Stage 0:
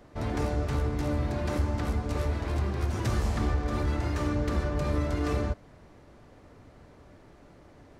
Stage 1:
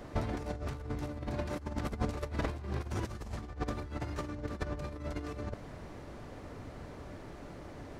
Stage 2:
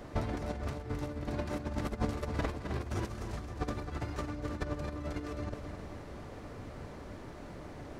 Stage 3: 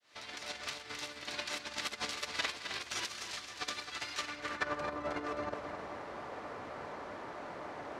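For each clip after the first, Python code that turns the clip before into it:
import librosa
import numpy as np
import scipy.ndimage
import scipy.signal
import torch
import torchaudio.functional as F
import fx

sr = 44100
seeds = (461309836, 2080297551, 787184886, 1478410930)

y1 = fx.over_compress(x, sr, threshold_db=-34.0, ratio=-0.5)
y1 = F.gain(torch.from_numpy(y1), -1.0).numpy()
y2 = fx.echo_feedback(y1, sr, ms=263, feedback_pct=51, wet_db=-8.0)
y3 = fx.fade_in_head(y2, sr, length_s=0.56)
y3 = fx.high_shelf(y3, sr, hz=2200.0, db=10.0)
y3 = fx.filter_sweep_bandpass(y3, sr, from_hz=3500.0, to_hz=940.0, start_s=4.15, end_s=4.93, q=0.98)
y3 = F.gain(torch.from_numpy(y3), 7.0).numpy()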